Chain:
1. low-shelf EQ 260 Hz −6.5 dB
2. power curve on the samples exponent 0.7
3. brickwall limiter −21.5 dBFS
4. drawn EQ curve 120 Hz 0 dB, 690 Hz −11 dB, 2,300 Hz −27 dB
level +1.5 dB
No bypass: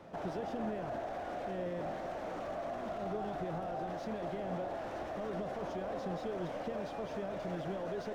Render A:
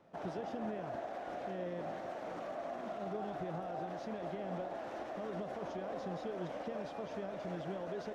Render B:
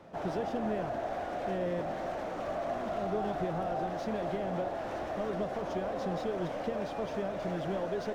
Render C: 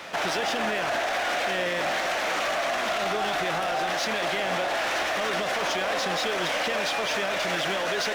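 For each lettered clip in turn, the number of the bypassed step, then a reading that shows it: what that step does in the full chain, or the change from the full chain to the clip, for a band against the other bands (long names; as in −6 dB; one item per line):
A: 2, change in integrated loudness −2.5 LU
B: 3, average gain reduction 4.5 dB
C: 4, 4 kHz band +17.5 dB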